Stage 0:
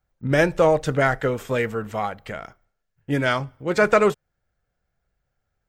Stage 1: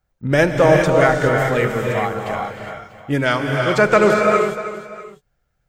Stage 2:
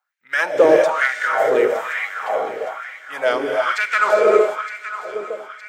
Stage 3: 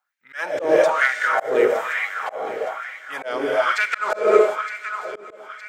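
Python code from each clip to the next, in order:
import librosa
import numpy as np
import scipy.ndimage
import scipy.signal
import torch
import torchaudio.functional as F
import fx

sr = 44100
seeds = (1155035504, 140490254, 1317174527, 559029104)

y1 = fx.echo_multitap(x, sr, ms=(309, 644), db=(-13.0, -19.0))
y1 = fx.rev_gated(y1, sr, seeds[0], gate_ms=440, shape='rising', drr_db=1.0)
y1 = y1 * librosa.db_to_amplitude(3.0)
y2 = fx.echo_alternate(y1, sr, ms=457, hz=810.0, feedback_pct=71, wet_db=-10.0)
y2 = np.clip(y2, -10.0 ** (-6.0 / 20.0), 10.0 ** (-6.0 / 20.0))
y2 = fx.filter_lfo_highpass(y2, sr, shape='sine', hz=1.1, low_hz=380.0, high_hz=2100.0, q=3.6)
y2 = y2 * librosa.db_to_amplitude(-4.5)
y3 = fx.auto_swell(y2, sr, attack_ms=218.0)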